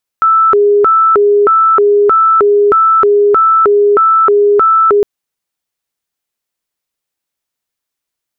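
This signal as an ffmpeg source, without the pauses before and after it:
-f lavfi -i "aevalsrc='0.562*sin(2*PI*(865*t+455/1.6*(0.5-abs(mod(1.6*t,1)-0.5))))':d=4.81:s=44100"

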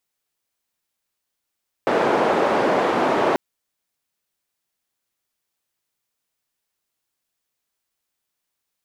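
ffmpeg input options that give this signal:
-f lavfi -i "anoisesrc=c=white:d=1.49:r=44100:seed=1,highpass=f=320,lowpass=f=710,volume=2.7dB"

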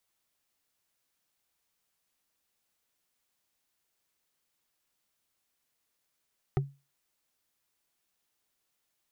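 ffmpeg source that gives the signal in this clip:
-f lavfi -i "aevalsrc='0.0891*pow(10,-3*t/0.28)*sin(2*PI*139*t)+0.0562*pow(10,-3*t/0.083)*sin(2*PI*383.2*t)+0.0355*pow(10,-3*t/0.037)*sin(2*PI*751.2*t)+0.0224*pow(10,-3*t/0.02)*sin(2*PI*1241.7*t)+0.0141*pow(10,-3*t/0.013)*sin(2*PI*1854.3*t)':d=0.45:s=44100"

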